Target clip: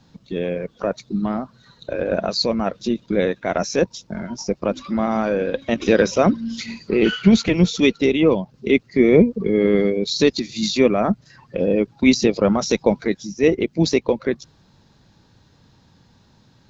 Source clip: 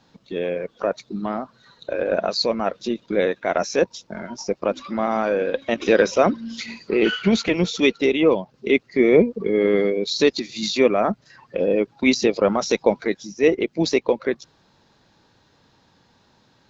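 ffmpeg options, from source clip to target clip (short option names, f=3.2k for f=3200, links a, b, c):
-af "bass=f=250:g=11,treble=f=4k:g=4,volume=-1dB"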